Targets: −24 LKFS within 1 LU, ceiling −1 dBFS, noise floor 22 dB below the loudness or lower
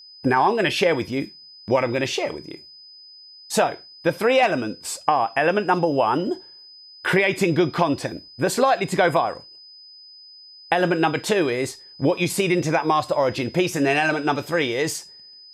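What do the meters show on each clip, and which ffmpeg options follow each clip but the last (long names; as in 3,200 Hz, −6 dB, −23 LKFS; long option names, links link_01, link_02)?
interfering tone 5,000 Hz; level of the tone −43 dBFS; integrated loudness −21.5 LKFS; sample peak −4.5 dBFS; target loudness −24.0 LKFS
→ -af "bandreject=frequency=5000:width=30"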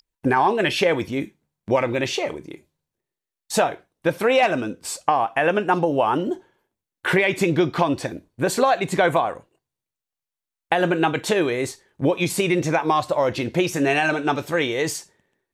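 interfering tone none found; integrated loudness −21.5 LKFS; sample peak −4.5 dBFS; target loudness −24.0 LKFS
→ -af "volume=-2.5dB"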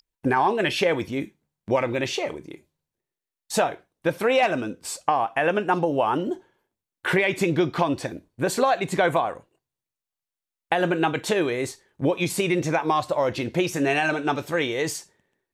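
integrated loudness −24.0 LKFS; sample peak −7.0 dBFS; background noise floor −90 dBFS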